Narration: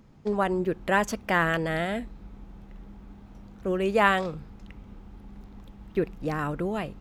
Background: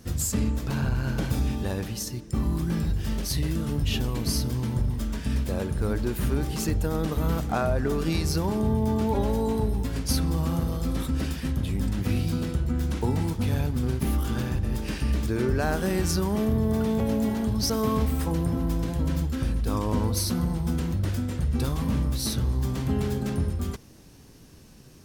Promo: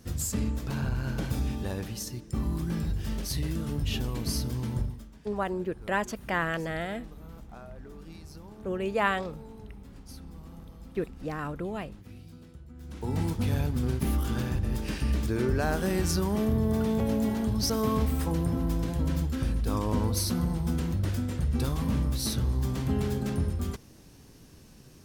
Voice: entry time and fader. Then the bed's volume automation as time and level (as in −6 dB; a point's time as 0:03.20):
5.00 s, −5.0 dB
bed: 0:04.82 −4 dB
0:05.11 −21.5 dB
0:12.74 −21.5 dB
0:13.19 −2 dB